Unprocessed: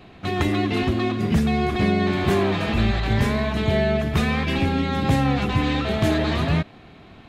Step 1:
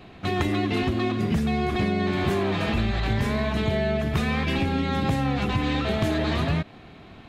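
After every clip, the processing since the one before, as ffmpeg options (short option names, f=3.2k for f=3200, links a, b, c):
-af "acompressor=threshold=-20dB:ratio=6"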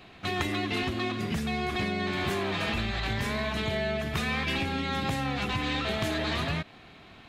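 -af "tiltshelf=f=900:g=-4.5,volume=-3.5dB"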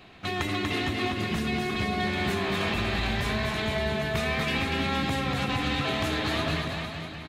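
-af "aecho=1:1:240|456|650.4|825.4|982.8:0.631|0.398|0.251|0.158|0.1"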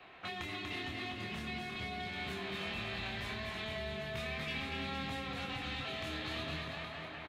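-filter_complex "[0:a]acrossover=split=270|3000[a][b][c];[b]acompressor=threshold=-41dB:ratio=10[d];[a][d][c]amix=inputs=3:normalize=0,acrossover=split=410 3200:gain=0.224 1 0.2[e][f][g];[e][f][g]amix=inputs=3:normalize=0,asplit=2[h][i];[i]adelay=26,volume=-4.5dB[j];[h][j]amix=inputs=2:normalize=0,volume=-2.5dB"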